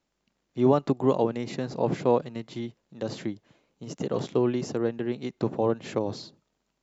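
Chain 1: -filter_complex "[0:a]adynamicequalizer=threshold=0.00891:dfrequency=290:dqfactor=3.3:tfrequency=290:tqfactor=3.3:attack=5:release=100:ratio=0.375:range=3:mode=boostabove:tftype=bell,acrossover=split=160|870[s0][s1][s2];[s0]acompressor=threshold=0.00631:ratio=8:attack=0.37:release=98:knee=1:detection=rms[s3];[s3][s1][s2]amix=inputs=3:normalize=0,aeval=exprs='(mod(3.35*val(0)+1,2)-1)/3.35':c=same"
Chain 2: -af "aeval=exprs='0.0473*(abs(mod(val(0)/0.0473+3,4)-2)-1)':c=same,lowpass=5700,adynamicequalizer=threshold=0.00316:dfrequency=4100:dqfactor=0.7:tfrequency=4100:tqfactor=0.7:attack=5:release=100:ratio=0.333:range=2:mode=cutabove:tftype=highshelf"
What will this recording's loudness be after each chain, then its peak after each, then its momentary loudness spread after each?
-26.5 LUFS, -35.5 LUFS; -10.5 dBFS, -26.5 dBFS; 16 LU, 7 LU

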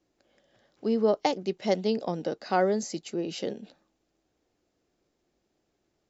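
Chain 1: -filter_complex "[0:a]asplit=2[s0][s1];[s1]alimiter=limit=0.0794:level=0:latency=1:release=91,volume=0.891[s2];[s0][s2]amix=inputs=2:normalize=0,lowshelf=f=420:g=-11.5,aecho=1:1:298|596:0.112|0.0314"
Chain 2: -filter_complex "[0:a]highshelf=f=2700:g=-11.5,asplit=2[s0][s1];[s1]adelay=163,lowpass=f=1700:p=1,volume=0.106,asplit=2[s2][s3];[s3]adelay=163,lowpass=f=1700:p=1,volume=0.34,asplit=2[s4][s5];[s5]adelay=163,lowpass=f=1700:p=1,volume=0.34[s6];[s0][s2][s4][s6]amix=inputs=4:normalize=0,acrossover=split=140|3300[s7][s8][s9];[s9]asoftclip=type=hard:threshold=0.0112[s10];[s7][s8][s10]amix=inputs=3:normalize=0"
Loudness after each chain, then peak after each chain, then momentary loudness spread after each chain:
-30.0 LUFS, -29.5 LUFS; -10.0 dBFS, -13.0 dBFS; 10 LU, 10 LU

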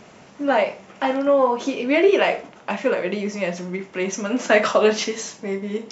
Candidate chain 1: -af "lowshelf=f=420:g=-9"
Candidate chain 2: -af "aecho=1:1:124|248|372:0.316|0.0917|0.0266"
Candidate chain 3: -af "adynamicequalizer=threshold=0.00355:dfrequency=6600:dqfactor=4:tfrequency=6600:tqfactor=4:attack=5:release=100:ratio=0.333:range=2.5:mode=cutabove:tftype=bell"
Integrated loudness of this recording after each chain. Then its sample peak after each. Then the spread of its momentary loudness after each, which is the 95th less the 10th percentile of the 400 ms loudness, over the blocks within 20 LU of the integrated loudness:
-24.0 LUFS, -21.0 LUFS, -21.5 LUFS; -5.0 dBFS, -3.0 dBFS, -3.0 dBFS; 12 LU, 11 LU, 12 LU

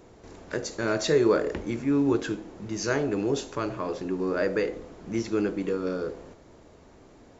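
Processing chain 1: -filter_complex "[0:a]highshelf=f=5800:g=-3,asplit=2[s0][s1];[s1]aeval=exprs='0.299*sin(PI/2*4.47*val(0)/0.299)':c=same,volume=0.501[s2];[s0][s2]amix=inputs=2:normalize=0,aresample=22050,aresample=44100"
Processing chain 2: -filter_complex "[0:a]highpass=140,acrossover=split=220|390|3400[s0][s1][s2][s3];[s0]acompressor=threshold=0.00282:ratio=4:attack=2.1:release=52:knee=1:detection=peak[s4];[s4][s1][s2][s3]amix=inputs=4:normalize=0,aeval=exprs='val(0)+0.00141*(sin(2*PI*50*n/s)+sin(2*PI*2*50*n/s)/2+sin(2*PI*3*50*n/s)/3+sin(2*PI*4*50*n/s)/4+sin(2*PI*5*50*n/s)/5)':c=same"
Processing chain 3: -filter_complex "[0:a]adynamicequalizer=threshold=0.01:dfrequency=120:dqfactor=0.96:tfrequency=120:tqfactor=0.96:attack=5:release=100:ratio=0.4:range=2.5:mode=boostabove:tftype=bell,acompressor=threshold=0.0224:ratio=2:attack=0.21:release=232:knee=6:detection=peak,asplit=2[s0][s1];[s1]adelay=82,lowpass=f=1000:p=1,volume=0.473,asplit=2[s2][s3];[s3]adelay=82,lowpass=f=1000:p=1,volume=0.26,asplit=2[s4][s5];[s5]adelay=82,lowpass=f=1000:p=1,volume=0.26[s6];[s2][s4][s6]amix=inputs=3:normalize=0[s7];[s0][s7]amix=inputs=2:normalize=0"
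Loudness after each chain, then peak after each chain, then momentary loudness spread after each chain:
-19.5 LUFS, -29.0 LUFS, -34.0 LUFS; -9.5 dBFS, -11.5 dBFS, -19.5 dBFS; 8 LU, 11 LU, 18 LU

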